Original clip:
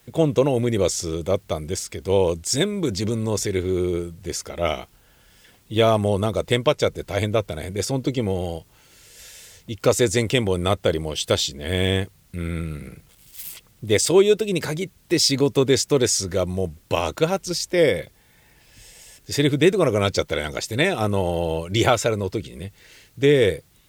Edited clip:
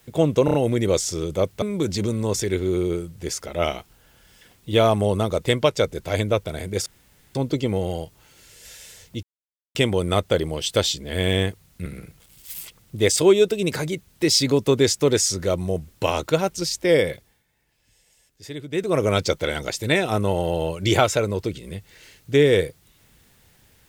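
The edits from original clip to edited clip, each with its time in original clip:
0.45 s: stutter 0.03 s, 4 plays
1.53–2.65 s: delete
7.89 s: insert room tone 0.49 s
9.77–10.29 s: mute
12.40–12.75 s: delete
18.00–19.92 s: dip -15 dB, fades 0.33 s

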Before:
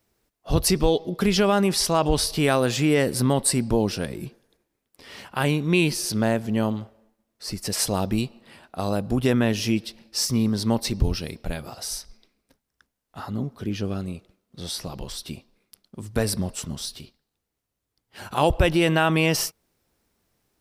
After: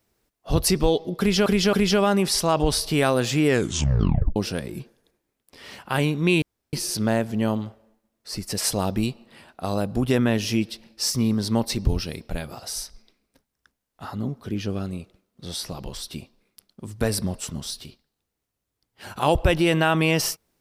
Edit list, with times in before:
1.19–1.46 s: loop, 3 plays
2.92 s: tape stop 0.90 s
5.88 s: insert room tone 0.31 s

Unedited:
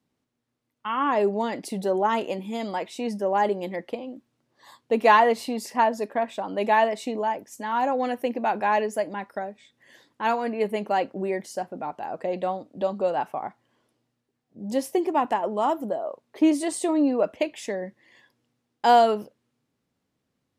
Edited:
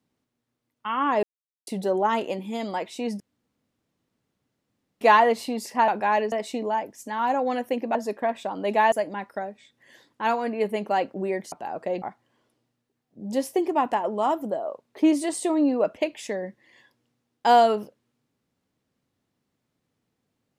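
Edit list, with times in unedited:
1.23–1.67 s: mute
3.20–5.01 s: room tone
5.88–6.85 s: swap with 8.48–8.92 s
11.52–11.90 s: delete
12.40–13.41 s: delete

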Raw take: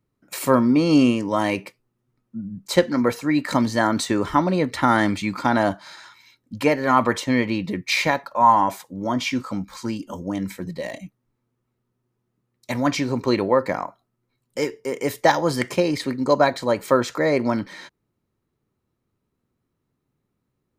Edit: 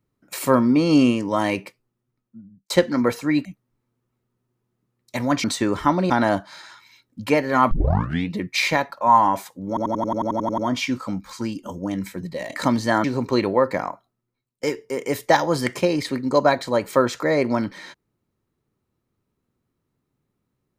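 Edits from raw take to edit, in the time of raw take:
1.59–2.70 s: fade out
3.45–3.93 s: swap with 11.00–12.99 s
4.59–5.44 s: delete
7.05 s: tape start 0.60 s
9.02 s: stutter 0.09 s, 11 plays
13.85–14.58 s: fade out, to -24 dB

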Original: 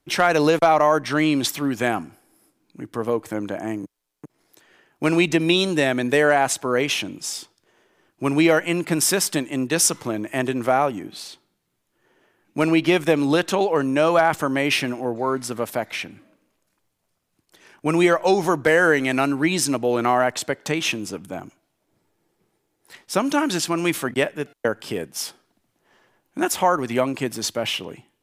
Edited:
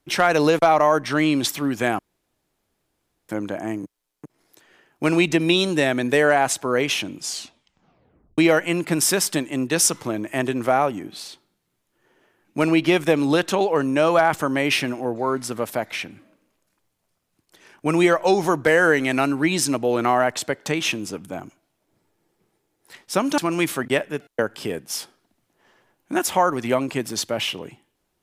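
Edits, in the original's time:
1.99–3.29 s: room tone
7.21 s: tape stop 1.17 s
23.38–23.64 s: delete

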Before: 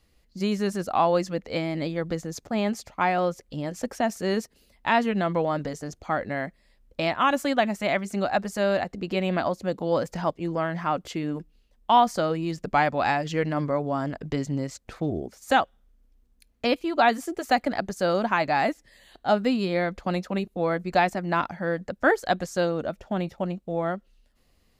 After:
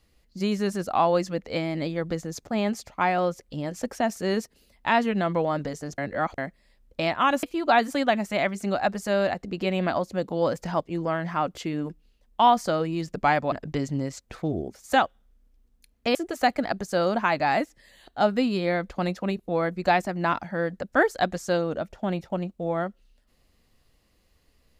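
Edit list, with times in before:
5.98–6.38 s: reverse
13.02–14.10 s: delete
16.73–17.23 s: move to 7.43 s

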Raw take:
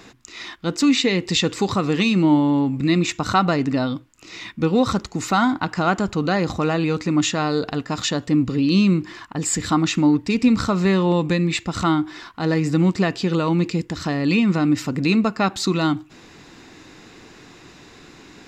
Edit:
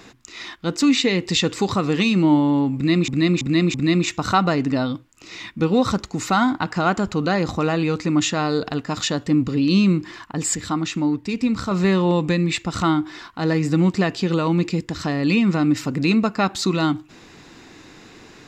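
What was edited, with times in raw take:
2.75–3.08 s: loop, 4 plays
9.56–10.72 s: gain -4.5 dB

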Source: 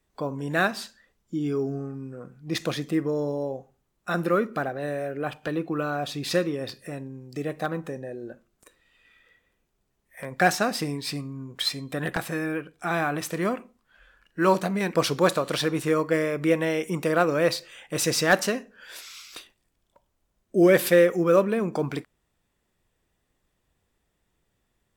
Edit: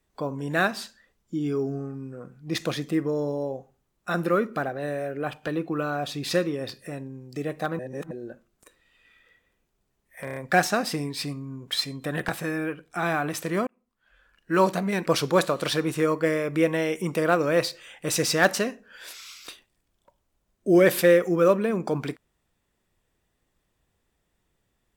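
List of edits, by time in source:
7.79–8.11 s: reverse
10.24 s: stutter 0.03 s, 5 plays
13.55–14.41 s: fade in

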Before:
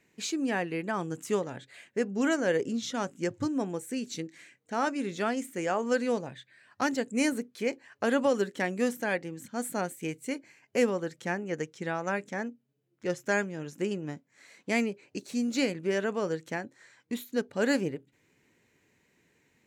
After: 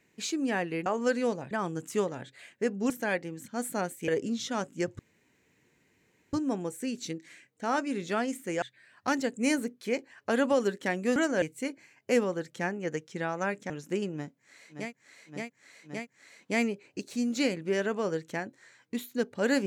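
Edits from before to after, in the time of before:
2.25–2.51 s: swap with 8.90–10.08 s
3.42 s: insert room tone 1.34 s
5.71–6.36 s: move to 0.86 s
12.36–13.59 s: delete
14.13–14.70 s: loop, 4 plays, crossfade 0.24 s

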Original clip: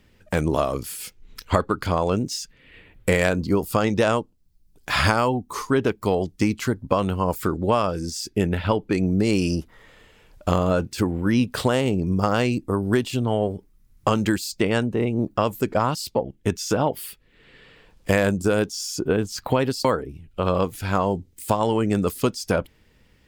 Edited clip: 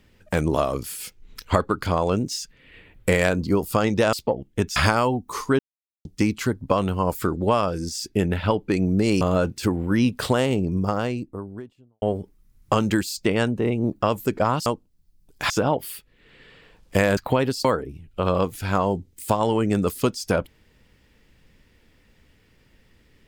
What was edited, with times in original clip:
4.13–4.97 s: swap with 16.01–16.64 s
5.80–6.26 s: mute
9.42–10.56 s: delete
11.73–13.37 s: studio fade out
18.31–19.37 s: delete

